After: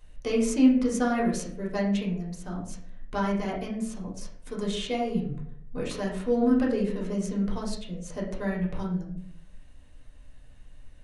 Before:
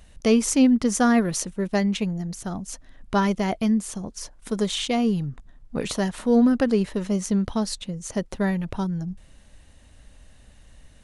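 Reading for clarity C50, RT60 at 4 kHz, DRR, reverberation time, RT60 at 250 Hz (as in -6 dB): 6.0 dB, 0.40 s, -3.5 dB, 0.65 s, 0.75 s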